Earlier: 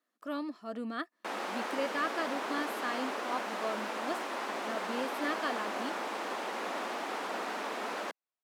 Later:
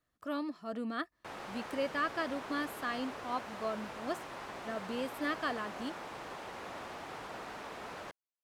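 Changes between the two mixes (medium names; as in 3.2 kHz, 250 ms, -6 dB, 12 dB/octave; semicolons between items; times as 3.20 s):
background -8.0 dB; master: remove brick-wall FIR high-pass 190 Hz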